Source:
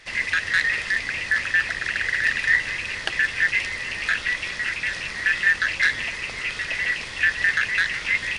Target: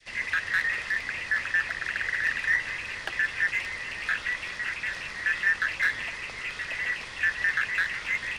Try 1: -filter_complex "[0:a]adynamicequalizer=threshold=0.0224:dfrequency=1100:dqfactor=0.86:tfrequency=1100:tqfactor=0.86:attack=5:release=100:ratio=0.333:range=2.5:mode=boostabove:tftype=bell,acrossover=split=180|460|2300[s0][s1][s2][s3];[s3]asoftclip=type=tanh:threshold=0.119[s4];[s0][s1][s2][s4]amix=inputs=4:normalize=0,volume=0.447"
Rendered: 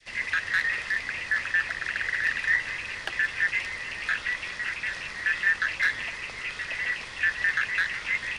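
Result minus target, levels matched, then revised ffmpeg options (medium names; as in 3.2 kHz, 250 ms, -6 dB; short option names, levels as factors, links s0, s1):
saturation: distortion -9 dB
-filter_complex "[0:a]adynamicequalizer=threshold=0.0224:dfrequency=1100:dqfactor=0.86:tfrequency=1100:tqfactor=0.86:attack=5:release=100:ratio=0.333:range=2.5:mode=boostabove:tftype=bell,acrossover=split=180|460|2300[s0][s1][s2][s3];[s3]asoftclip=type=tanh:threshold=0.0501[s4];[s0][s1][s2][s4]amix=inputs=4:normalize=0,volume=0.447"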